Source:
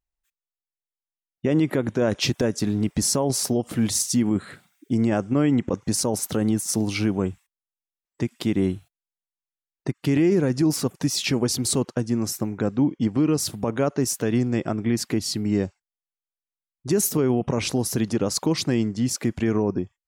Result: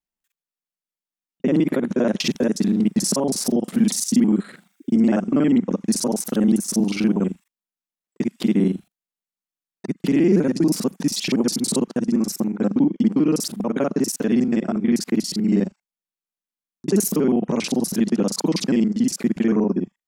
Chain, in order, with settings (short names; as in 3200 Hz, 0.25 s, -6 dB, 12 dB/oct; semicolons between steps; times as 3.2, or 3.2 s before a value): local time reversal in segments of 40 ms; resonant low shelf 140 Hz -11.5 dB, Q 3